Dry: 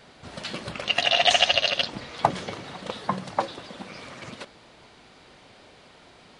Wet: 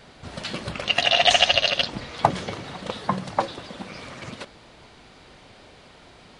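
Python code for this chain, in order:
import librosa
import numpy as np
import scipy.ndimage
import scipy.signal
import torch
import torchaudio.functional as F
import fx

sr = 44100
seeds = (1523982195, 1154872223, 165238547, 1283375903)

y = fx.low_shelf(x, sr, hz=92.0, db=8.5)
y = y * librosa.db_to_amplitude(2.0)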